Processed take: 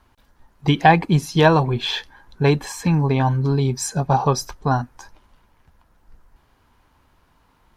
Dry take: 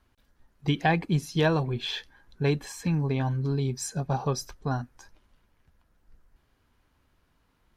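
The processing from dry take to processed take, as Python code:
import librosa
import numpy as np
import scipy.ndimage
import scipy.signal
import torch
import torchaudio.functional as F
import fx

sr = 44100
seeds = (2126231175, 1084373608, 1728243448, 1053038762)

y = fx.peak_eq(x, sr, hz=920.0, db=7.0, octaves=0.72)
y = F.gain(torch.from_numpy(y), 8.0).numpy()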